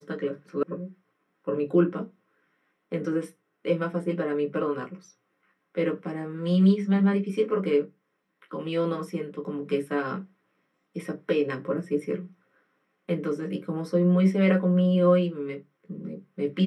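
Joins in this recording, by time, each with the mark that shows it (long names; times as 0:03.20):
0:00.63: cut off before it has died away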